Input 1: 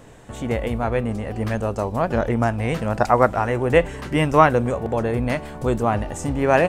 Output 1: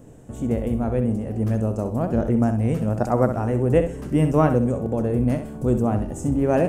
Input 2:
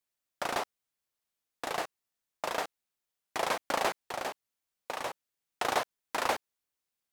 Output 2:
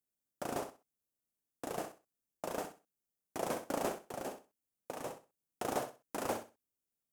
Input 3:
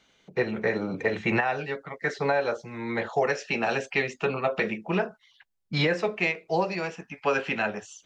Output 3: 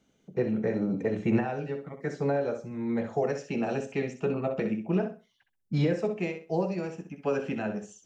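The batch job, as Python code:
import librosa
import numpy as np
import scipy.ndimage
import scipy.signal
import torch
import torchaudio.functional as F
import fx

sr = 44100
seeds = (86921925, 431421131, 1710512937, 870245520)

p1 = fx.graphic_eq(x, sr, hz=(125, 250, 1000, 2000, 4000), db=(3, 5, -7, -9, -11))
p2 = p1 + fx.echo_feedback(p1, sr, ms=64, feedback_pct=22, wet_db=-9, dry=0)
y = p2 * 10.0 ** (-2.0 / 20.0)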